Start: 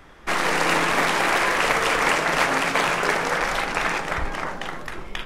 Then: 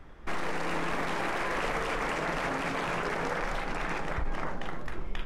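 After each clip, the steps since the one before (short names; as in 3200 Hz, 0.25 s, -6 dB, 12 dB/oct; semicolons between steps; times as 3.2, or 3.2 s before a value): tilt -2 dB/oct; limiter -15 dBFS, peak gain reduction 9.5 dB; gain -7 dB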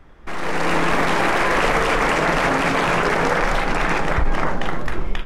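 AGC gain up to 11 dB; gain +2 dB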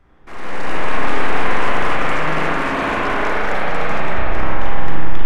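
spring tank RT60 3.5 s, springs 32/45 ms, chirp 30 ms, DRR -6 dB; gain -8 dB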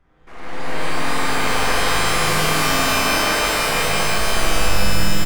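on a send: echo 0.147 s -5 dB; on the sum: shimmer reverb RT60 2.5 s, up +12 st, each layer -2 dB, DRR -1.5 dB; gain -6.5 dB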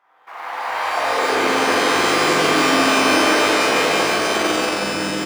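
in parallel at -4 dB: soft clip -15 dBFS, distortion -12 dB; on the sum: high-pass sweep 870 Hz -> 300 Hz, 0.84–1.53; decimation joined by straight lines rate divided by 3×; gain -1 dB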